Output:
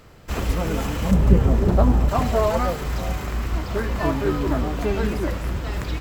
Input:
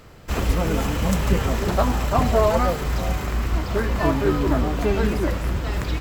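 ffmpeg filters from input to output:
-filter_complex "[0:a]asettb=1/sr,asplit=3[a][b][c];[a]atrim=end=1.114[d];[b]atrim=start=1.11:end=2.09,asetpts=PTS-STARTPTS,afade=t=in:d=0.004:c=qsin,afade=t=out:st=0.976:d=0.004:c=qsin,tiltshelf=f=820:g=8[e];[c]atrim=start=2.086[f];[d][e]acrossfade=d=0.004:c1=hsin:c2=qsin[g];[g][f]acrossfade=d=0.004:c1=qsin:c2=hsin,volume=-2dB"

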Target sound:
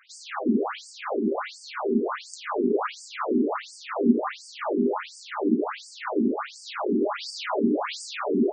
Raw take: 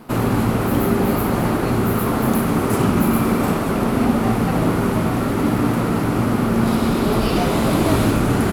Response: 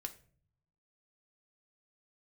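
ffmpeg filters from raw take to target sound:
-filter_complex "[1:a]atrim=start_sample=2205,asetrate=36162,aresample=44100[a];[0:a][a]afir=irnorm=-1:irlink=0,afftfilt=real='re*between(b*sr/1024,280*pow(6500/280,0.5+0.5*sin(2*PI*1.4*pts/sr))/1.41,280*pow(6500/280,0.5+0.5*sin(2*PI*1.4*pts/sr))*1.41)':imag='im*between(b*sr/1024,280*pow(6500/280,0.5+0.5*sin(2*PI*1.4*pts/sr))/1.41,280*pow(6500/280,0.5+0.5*sin(2*PI*1.4*pts/sr))*1.41)':win_size=1024:overlap=0.75,volume=2dB"

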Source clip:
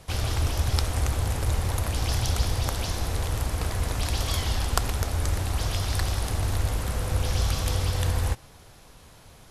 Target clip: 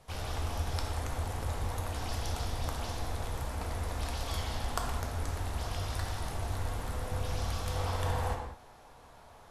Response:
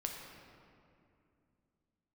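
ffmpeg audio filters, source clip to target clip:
-filter_complex "[0:a]asetnsamples=n=441:p=0,asendcmd='7.76 equalizer g 13',equalizer=f=850:t=o:w=1.9:g=6[a];[1:a]atrim=start_sample=2205,afade=t=out:st=0.39:d=0.01,atrim=end_sample=17640,asetrate=70560,aresample=44100[b];[a][b]afir=irnorm=-1:irlink=0,volume=-6dB"

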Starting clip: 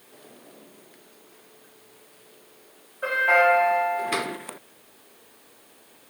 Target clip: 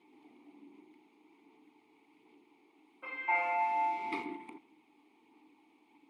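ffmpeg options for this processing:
-filter_complex "[0:a]aphaser=in_gain=1:out_gain=1:delay=1.8:decay=0.24:speed=1.3:type=sinusoidal,asettb=1/sr,asplit=3[a][b][c];[a]atrim=end=3.354[d];[b]atrim=start=3.35:end=4.24,asetpts=PTS-STARTPTS,afade=t=in:d=0.004:c=qsin,afade=t=out:st=0.886:d=0.004:c=qsin,aeval=exprs='val(0)*gte(abs(val(0)),0.0335)':c=same[e];[c]atrim=start=4.236[f];[d][e]acrossfade=d=0.004:c1=hsin:c2=qsin[g];[g][f]acrossfade=d=0.004:c1=qsin:c2=hsin,asplit=3[h][i][j];[h]bandpass=f=300:t=q:w=8,volume=0dB[k];[i]bandpass=f=870:t=q:w=8,volume=-6dB[l];[j]bandpass=f=2.24k:t=q:w=8,volume=-9dB[m];[k][l][m]amix=inputs=3:normalize=0,volume=2.5dB"

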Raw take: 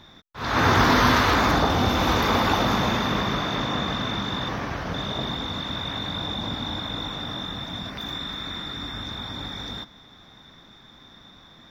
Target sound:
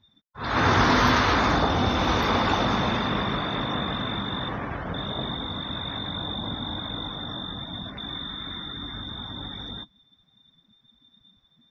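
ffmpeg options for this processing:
-af "afftdn=nr=21:nf=-38,volume=-1.5dB"

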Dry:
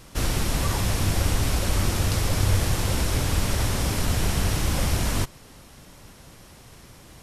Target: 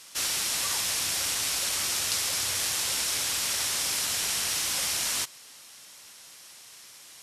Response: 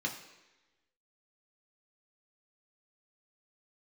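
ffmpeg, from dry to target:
-af "acontrast=51,bandpass=f=7k:t=q:w=0.53:csg=0"

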